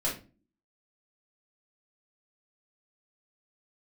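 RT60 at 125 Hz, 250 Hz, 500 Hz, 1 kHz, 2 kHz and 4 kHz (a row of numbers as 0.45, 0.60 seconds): 0.50, 0.60, 0.40, 0.30, 0.30, 0.25 seconds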